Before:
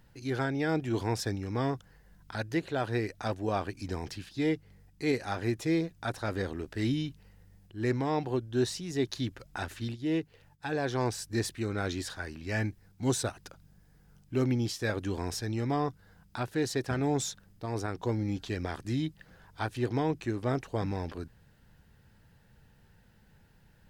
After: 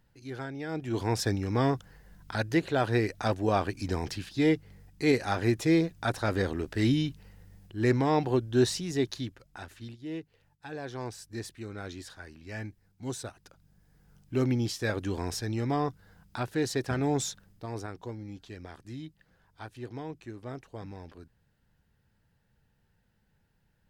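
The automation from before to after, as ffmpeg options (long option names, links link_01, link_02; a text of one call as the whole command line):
ffmpeg -i in.wav -af "volume=13dB,afade=type=in:start_time=0.69:duration=0.61:silence=0.266073,afade=type=out:start_time=8.78:duration=0.61:silence=0.251189,afade=type=in:start_time=13.45:duration=0.91:silence=0.375837,afade=type=out:start_time=17.26:duration=0.9:silence=0.281838" out.wav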